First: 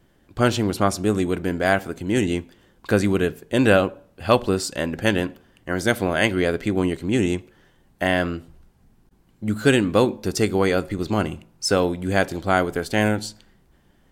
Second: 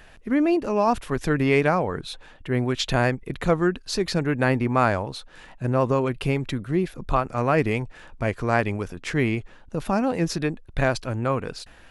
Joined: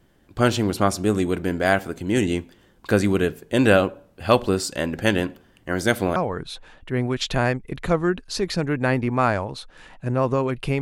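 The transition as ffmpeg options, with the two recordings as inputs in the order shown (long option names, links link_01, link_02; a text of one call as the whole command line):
ffmpeg -i cue0.wav -i cue1.wav -filter_complex "[0:a]apad=whole_dur=10.81,atrim=end=10.81,atrim=end=6.162[link_01];[1:a]atrim=start=1.738:end=6.39[link_02];[link_01][link_02]acrossfade=duration=0.004:curve1=hsin:curve2=hsin" out.wav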